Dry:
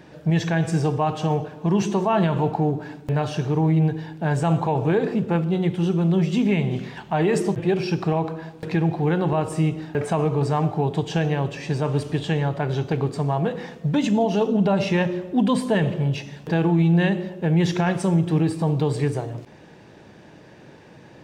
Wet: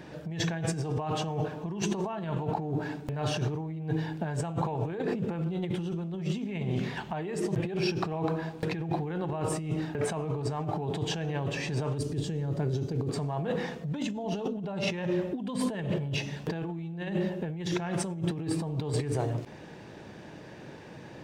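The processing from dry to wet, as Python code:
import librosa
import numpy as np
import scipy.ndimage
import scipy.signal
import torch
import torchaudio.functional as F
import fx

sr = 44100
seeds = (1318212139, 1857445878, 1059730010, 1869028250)

y = fx.band_shelf(x, sr, hz=1500.0, db=-11.0, octaves=2.9, at=(11.98, 13.09))
y = fx.over_compress(y, sr, threshold_db=-27.0, ratio=-1.0)
y = y * librosa.db_to_amplitude(-4.5)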